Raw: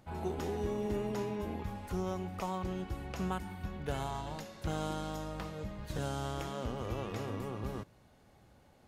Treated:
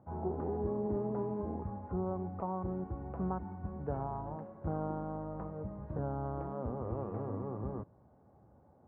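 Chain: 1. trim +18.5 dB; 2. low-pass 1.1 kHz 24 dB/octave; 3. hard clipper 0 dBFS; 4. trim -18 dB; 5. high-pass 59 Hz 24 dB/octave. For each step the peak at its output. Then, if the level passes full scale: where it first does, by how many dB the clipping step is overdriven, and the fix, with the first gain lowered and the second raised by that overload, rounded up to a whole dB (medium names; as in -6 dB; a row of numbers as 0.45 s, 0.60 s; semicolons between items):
-4.0 dBFS, -5.0 dBFS, -5.0 dBFS, -23.0 dBFS, -24.0 dBFS; nothing clips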